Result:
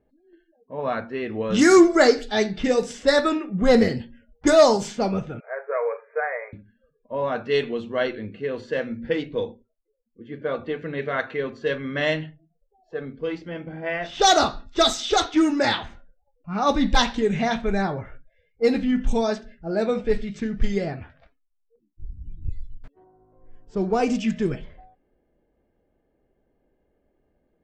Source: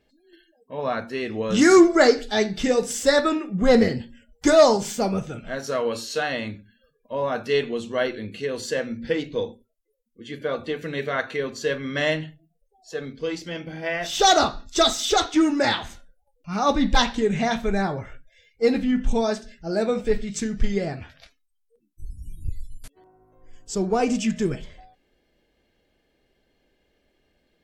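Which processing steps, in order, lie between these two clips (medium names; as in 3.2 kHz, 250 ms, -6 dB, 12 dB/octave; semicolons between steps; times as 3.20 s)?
level-controlled noise filter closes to 1 kHz, open at -14.5 dBFS; 5.40–6.53 s: brick-wall FIR band-pass 400–2500 Hz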